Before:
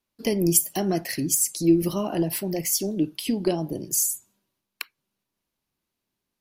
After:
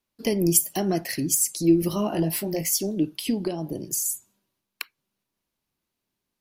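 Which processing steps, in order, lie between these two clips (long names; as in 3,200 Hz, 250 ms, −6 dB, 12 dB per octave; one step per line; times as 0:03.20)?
0:01.89–0:02.69: double-tracking delay 19 ms −6 dB
0:03.44–0:04.06: downward compressor 5 to 1, threshold −24 dBFS, peak gain reduction 6.5 dB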